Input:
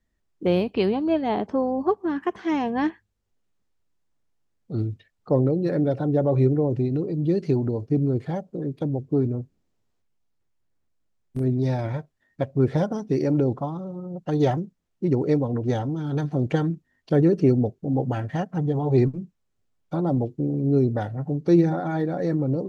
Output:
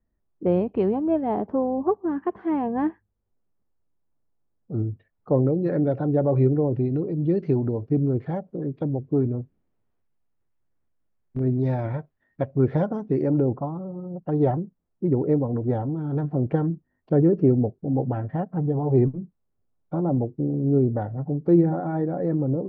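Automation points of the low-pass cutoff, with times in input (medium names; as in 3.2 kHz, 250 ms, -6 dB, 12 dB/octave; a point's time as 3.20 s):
4.89 s 1.1 kHz
5.72 s 2 kHz
12.78 s 2 kHz
13.67 s 1.1 kHz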